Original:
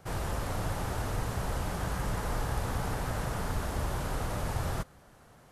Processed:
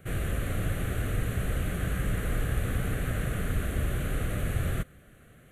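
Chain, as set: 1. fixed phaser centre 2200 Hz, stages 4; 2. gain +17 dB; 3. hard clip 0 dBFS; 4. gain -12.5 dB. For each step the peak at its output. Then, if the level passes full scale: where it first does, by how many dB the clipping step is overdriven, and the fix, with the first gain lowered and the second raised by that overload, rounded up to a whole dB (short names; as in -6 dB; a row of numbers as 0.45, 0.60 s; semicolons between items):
-21.5, -4.5, -4.5, -17.0 dBFS; no overload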